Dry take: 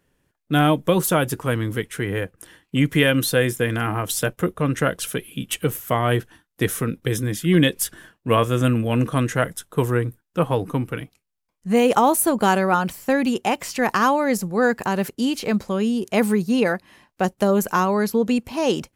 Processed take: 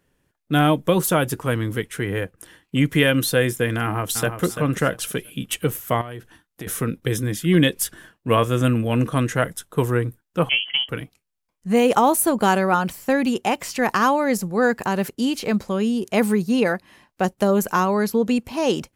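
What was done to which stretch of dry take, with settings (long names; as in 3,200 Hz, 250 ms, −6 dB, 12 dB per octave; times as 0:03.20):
0:03.81–0:04.43: delay throw 340 ms, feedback 25%, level −8.5 dB
0:06.01–0:06.67: downward compressor 5 to 1, threshold −31 dBFS
0:10.49–0:10.89: voice inversion scrambler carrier 3,200 Hz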